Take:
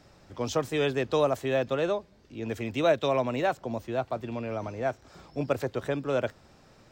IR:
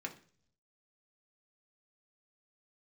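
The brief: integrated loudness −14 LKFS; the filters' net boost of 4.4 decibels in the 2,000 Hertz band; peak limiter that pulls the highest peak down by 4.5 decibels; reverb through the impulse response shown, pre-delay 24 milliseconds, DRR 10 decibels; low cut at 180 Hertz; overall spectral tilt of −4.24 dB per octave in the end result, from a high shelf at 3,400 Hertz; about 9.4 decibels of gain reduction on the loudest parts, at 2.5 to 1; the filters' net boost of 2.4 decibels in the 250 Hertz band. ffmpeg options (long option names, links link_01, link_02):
-filter_complex "[0:a]highpass=180,equalizer=frequency=250:width_type=o:gain=4,equalizer=frequency=2000:width_type=o:gain=8.5,highshelf=frequency=3400:gain=-8.5,acompressor=threshold=-32dB:ratio=2.5,alimiter=level_in=1dB:limit=-24dB:level=0:latency=1,volume=-1dB,asplit=2[link_01][link_02];[1:a]atrim=start_sample=2205,adelay=24[link_03];[link_02][link_03]afir=irnorm=-1:irlink=0,volume=-10dB[link_04];[link_01][link_04]amix=inputs=2:normalize=0,volume=21.5dB"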